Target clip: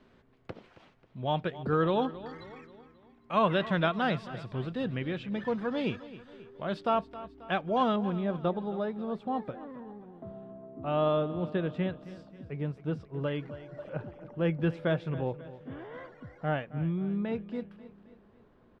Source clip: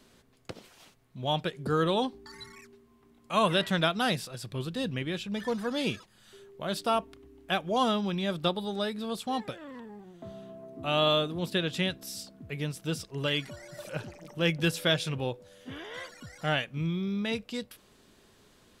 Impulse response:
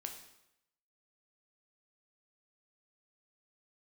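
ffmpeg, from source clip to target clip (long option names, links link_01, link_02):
-af "asetnsamples=nb_out_samples=441:pad=0,asendcmd='7.96 lowpass f 1200',lowpass=2200,aecho=1:1:269|538|807|1076:0.158|0.0777|0.0381|0.0186"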